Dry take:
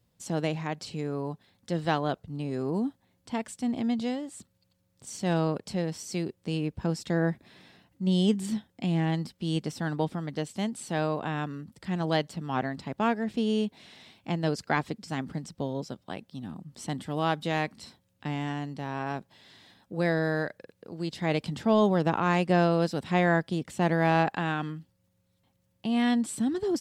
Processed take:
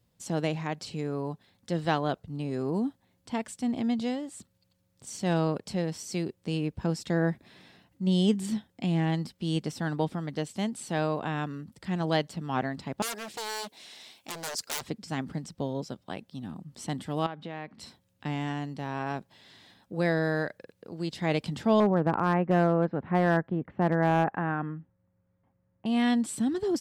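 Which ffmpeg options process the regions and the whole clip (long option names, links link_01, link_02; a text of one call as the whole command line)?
ffmpeg -i in.wav -filter_complex "[0:a]asettb=1/sr,asplit=3[link_01][link_02][link_03];[link_01]atrim=end=13.024[link_04];[link_02]atrim=start=13.02:end=14.82,asetpts=PTS-STARTPTS,afade=type=in:duration=0.004:curve=qsin,afade=type=out:start_time=1.796:duration=0.004:curve=qsin,aeval=exprs='0.0299*(abs(mod(val(0)/0.0299+3,4)-2)-1)':channel_layout=same,bass=frequency=250:gain=-14,treble=frequency=4000:gain=10[link_05];[link_03]atrim=start=14.816[link_06];[link_04][link_05]acrossfade=duration=0.004:curve1=hsin:curve2=qsin[link_07];[link_07][link_06]acrossfade=duration=0.004:curve1=qsin:curve2=hsin,asettb=1/sr,asplit=3[link_08][link_09][link_10];[link_08]atrim=end=17.264[link_11];[link_09]atrim=start=17.26:end=17.79,asetpts=PTS-STARTPTS,afade=type=in:duration=0.004:curve=qsin,afade=type=out:start_time=0.526:duration=0.004:curve=qsin,acompressor=threshold=-35dB:ratio=4:attack=3.2:release=140:knee=1:detection=peak,highpass=100,lowpass=2600[link_12];[link_10]atrim=start=17.786[link_13];[link_11][link_12]acrossfade=duration=0.004:curve1=hsin:curve2=qsin[link_14];[link_14][link_13]acrossfade=duration=0.004:curve1=qsin:curve2=hsin,asettb=1/sr,asplit=3[link_15][link_16][link_17];[link_15]atrim=end=21.804[link_18];[link_16]atrim=start=21.8:end=25.86,asetpts=PTS-STARTPTS,afade=type=in:duration=0.004:curve=qsin,afade=type=out:start_time=4.056:duration=0.004:curve=qsin,lowpass=frequency=1800:width=0.5412,lowpass=frequency=1800:width=1.3066,asoftclip=type=hard:threshold=-16.5dB[link_19];[link_17]atrim=start=25.856[link_20];[link_18][link_19]acrossfade=duration=0.004:curve1=hsin:curve2=qsin[link_21];[link_21][link_20]acrossfade=duration=0.004:curve1=qsin:curve2=hsin" out.wav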